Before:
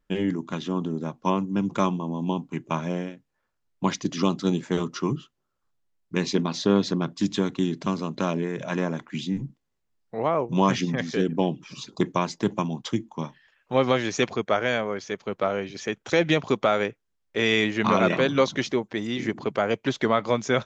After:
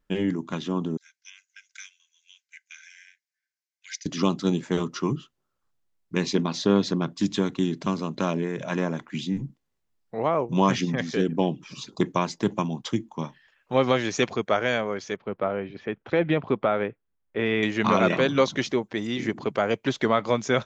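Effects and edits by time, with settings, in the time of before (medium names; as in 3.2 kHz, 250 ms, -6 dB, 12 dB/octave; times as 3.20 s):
0.97–4.06 s: rippled Chebyshev high-pass 1.5 kHz, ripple 9 dB
15.16–17.63 s: distance through air 450 m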